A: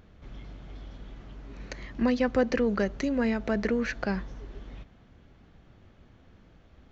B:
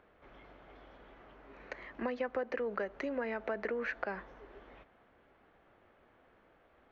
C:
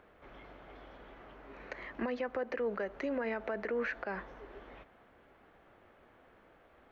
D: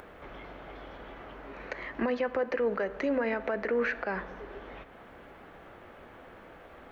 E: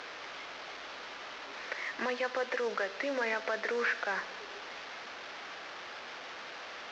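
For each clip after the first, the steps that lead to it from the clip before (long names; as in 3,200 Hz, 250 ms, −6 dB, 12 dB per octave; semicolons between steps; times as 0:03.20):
three-way crossover with the lows and the highs turned down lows −20 dB, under 370 Hz, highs −21 dB, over 2,600 Hz; downward compressor 6 to 1, threshold −32 dBFS, peak gain reduction 10 dB
brickwall limiter −30.5 dBFS, peak gain reduction 10 dB; level +3.5 dB
in parallel at +2 dB: upward compression, threshold −43 dBFS; on the sum: convolution reverb RT60 1.6 s, pre-delay 3 ms, DRR 13.5 dB; level −1.5 dB
linear delta modulator 32 kbit/s, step −38 dBFS; resonant band-pass 2,300 Hz, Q 0.52; level +3 dB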